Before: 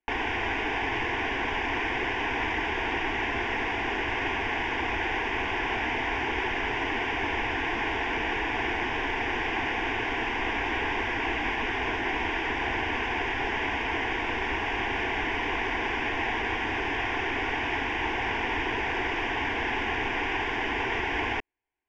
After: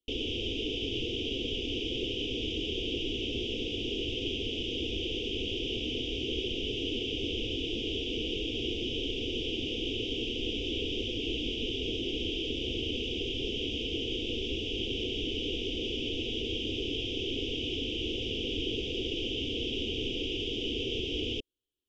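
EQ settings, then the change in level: Chebyshev band-stop 520–3100 Hz, order 4; high-order bell 3 kHz +8 dB 1 oct; 0.0 dB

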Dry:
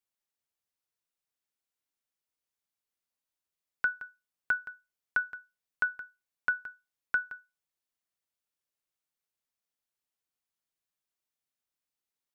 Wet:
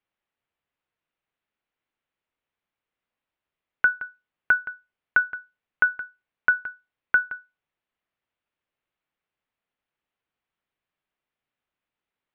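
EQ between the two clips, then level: low-pass 3 kHz 24 dB/octave; +9.0 dB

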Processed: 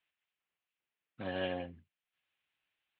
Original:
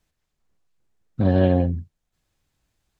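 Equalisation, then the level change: band-pass filter 2.9 kHz, Q 2.6; distance through air 490 m; +8.5 dB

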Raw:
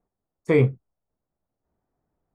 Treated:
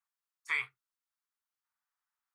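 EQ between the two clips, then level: inverse Chebyshev high-pass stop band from 590 Hz, stop band 40 dB; 0.0 dB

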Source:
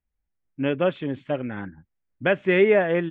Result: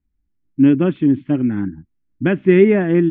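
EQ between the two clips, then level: distance through air 200 m; resonant low shelf 400 Hz +8.5 dB, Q 3; +1.5 dB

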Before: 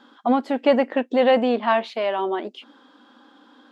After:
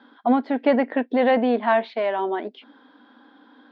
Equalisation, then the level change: cabinet simulation 280–4300 Hz, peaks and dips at 350 Hz -7 dB, 540 Hz -8 dB, 830 Hz -5 dB, 1.2 kHz -9 dB, 2.8 kHz -7 dB; treble shelf 2.7 kHz -12 dB; +6.5 dB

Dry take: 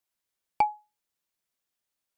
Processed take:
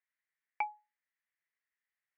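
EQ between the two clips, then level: band-pass filter 1.9 kHz, Q 6.5; distance through air 290 m; +11.0 dB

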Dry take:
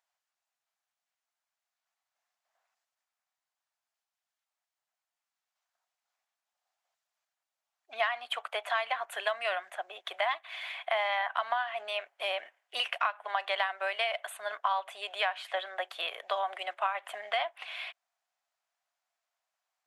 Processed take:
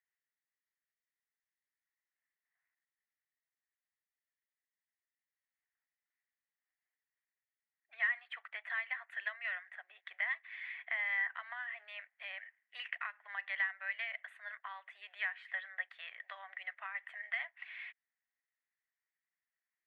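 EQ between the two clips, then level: band-pass filter 1.9 kHz, Q 9.1; +3.5 dB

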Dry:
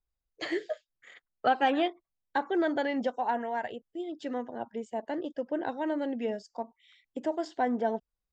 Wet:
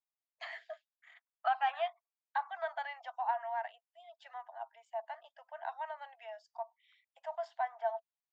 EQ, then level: low-pass 1.6 kHz 6 dB/octave; dynamic bell 1.2 kHz, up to +5 dB, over -50 dBFS, Q 4.2; rippled Chebyshev high-pass 650 Hz, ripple 3 dB; -2.0 dB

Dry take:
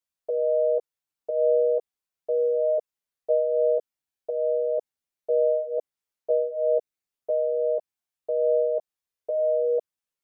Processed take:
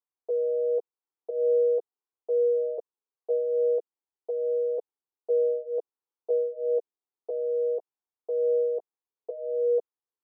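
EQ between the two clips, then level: band-pass filter 560 Hz, Q 1.6; static phaser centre 600 Hz, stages 6; +5.5 dB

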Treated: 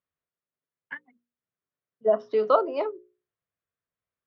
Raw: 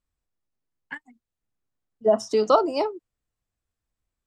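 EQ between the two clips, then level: distance through air 200 m; cabinet simulation 180–3600 Hz, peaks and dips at 230 Hz -9 dB, 320 Hz -8 dB, 820 Hz -9 dB, 2.7 kHz -4 dB; hum notches 60/120/180/240/300/360/420/480/540 Hz; +1.0 dB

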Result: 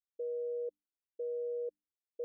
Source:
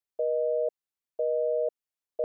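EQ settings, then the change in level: elliptic low-pass 520 Hz, stop band 40 dB; hum notches 50/100/150/200/250/300 Hz; static phaser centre 330 Hz, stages 4; -4.5 dB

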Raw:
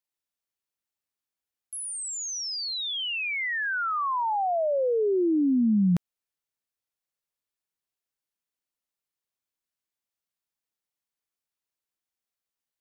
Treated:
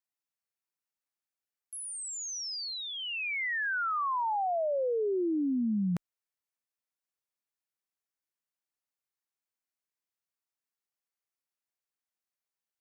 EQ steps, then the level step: tilt EQ +2 dB/octave; peaking EQ 3.4 kHz -5 dB 0.69 oct; treble shelf 5.1 kHz -10.5 dB; -3.0 dB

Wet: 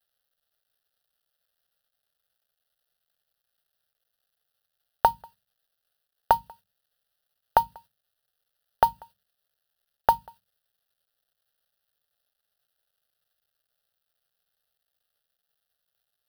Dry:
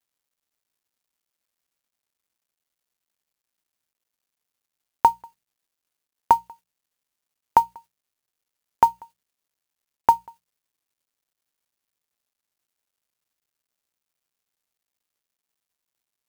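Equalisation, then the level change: hum notches 50/100/150/200/250 Hz; static phaser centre 1.5 kHz, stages 8; +5.5 dB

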